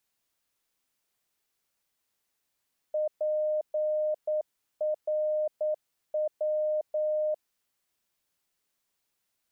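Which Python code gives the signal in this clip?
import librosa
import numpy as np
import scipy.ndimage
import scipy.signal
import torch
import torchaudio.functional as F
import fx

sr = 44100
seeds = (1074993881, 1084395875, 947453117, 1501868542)

y = fx.morse(sr, text='PRW', wpm=9, hz=612.0, level_db=-25.0)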